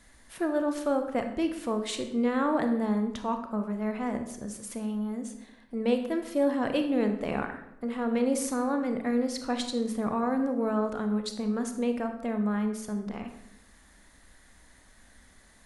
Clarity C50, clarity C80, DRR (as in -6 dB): 8.5 dB, 11.0 dB, 6.0 dB